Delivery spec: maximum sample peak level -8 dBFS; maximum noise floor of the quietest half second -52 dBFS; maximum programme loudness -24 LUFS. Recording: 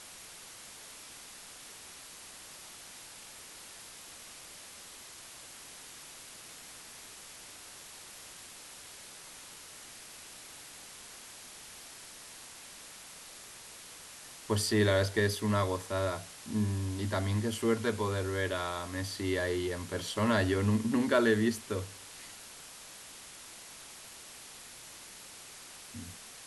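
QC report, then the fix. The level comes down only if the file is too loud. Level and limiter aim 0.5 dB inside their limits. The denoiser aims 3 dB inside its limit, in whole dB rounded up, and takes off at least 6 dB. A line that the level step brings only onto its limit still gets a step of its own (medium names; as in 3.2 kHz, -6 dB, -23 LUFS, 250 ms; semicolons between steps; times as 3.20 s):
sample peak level -14.0 dBFS: pass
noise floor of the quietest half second -50 dBFS: fail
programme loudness -31.5 LUFS: pass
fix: noise reduction 6 dB, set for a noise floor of -50 dBFS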